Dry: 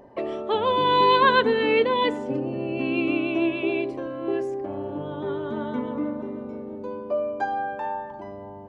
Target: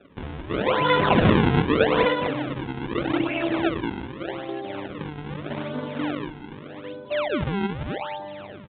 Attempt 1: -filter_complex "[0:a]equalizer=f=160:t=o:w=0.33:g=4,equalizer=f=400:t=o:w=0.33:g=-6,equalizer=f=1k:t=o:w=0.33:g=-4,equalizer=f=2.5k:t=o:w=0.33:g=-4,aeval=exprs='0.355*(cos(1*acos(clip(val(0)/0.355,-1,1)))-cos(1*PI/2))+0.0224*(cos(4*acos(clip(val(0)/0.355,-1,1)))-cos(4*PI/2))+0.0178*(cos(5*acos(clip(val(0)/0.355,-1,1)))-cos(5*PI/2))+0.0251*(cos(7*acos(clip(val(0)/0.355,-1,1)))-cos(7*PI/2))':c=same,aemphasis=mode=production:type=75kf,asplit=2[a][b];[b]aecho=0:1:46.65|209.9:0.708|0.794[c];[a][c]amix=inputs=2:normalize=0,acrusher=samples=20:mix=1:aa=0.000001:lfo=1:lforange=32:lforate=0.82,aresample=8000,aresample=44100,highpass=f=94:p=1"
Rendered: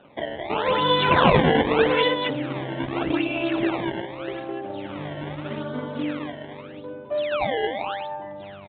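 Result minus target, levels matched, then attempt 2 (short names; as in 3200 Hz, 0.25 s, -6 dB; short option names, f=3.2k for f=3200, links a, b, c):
decimation with a swept rate: distortion -6 dB
-filter_complex "[0:a]equalizer=f=160:t=o:w=0.33:g=4,equalizer=f=400:t=o:w=0.33:g=-6,equalizer=f=1k:t=o:w=0.33:g=-4,equalizer=f=2.5k:t=o:w=0.33:g=-4,aeval=exprs='0.355*(cos(1*acos(clip(val(0)/0.355,-1,1)))-cos(1*PI/2))+0.0224*(cos(4*acos(clip(val(0)/0.355,-1,1)))-cos(4*PI/2))+0.0178*(cos(5*acos(clip(val(0)/0.355,-1,1)))-cos(5*PI/2))+0.0251*(cos(7*acos(clip(val(0)/0.355,-1,1)))-cos(7*PI/2))':c=same,aemphasis=mode=production:type=75kf,asplit=2[a][b];[b]aecho=0:1:46.65|209.9:0.708|0.794[c];[a][c]amix=inputs=2:normalize=0,acrusher=samples=42:mix=1:aa=0.000001:lfo=1:lforange=67.2:lforate=0.82,aresample=8000,aresample=44100,highpass=f=94:p=1"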